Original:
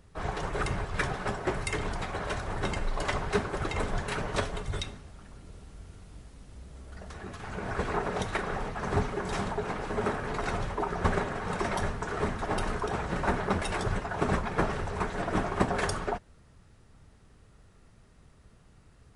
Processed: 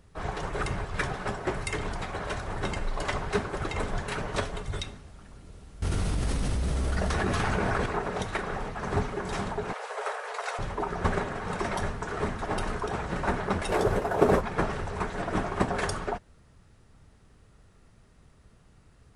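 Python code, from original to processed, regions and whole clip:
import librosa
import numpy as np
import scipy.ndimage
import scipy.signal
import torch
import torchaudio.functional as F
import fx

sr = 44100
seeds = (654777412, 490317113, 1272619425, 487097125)

y = fx.chain(x, sr, fx.notch(hz=7200.0, q=17.0),
    fx.env_flatten(amount_pct=100), at=(5.82, 7.86))
y = fx.chain(y, sr, fx.steep_highpass(hz=450.0, slope=72),
    fx.high_shelf(hz=5000.0, db=4.0), at=(9.73, 10.59))
y = fx.chain(y, sr, fx.cvsd(bps=64000),
    fx.peak_eq(hz=470.0, db=11.5, octaves=1.6), at=(13.69, 14.41))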